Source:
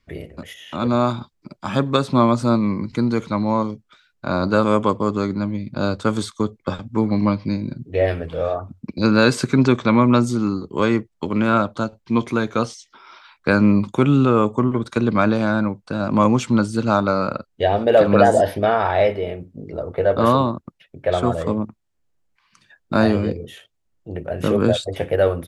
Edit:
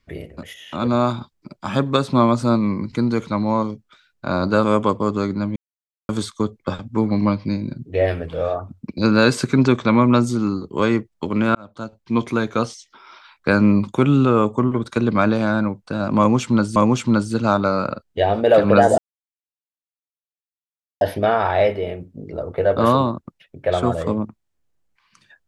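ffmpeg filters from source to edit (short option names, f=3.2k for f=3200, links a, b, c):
-filter_complex "[0:a]asplit=6[a][b][c][d][e][f];[a]atrim=end=5.56,asetpts=PTS-STARTPTS,afade=t=out:st=5.556:d=0.004:c=hsin[g];[b]atrim=start=5.56:end=6.09,asetpts=PTS-STARTPTS,volume=0[h];[c]atrim=start=6.09:end=11.55,asetpts=PTS-STARTPTS,afade=t=in:d=0.004:c=hsin,afade=t=out:st=5.456:d=0.004:c=hsin[i];[d]atrim=start=11.55:end=16.762,asetpts=PTS-STARTPTS,afade=t=in:d=0.66[j];[e]atrim=start=16.188:end=18.41,asetpts=PTS-STARTPTS,afade=t=out:st=2.218:d=0.004:c=hsin,apad=pad_dur=2.03[k];[f]atrim=start=18.41,asetpts=PTS-STARTPTS,afade=t=in:d=0.004:c=hsin[l];[g][h][i][j]concat=n=4:v=0:a=1[m];[k][l]concat=n=2:v=0:a=1[n];[m][n]acrossfade=d=0.004:c1=hsin:c2=hsin"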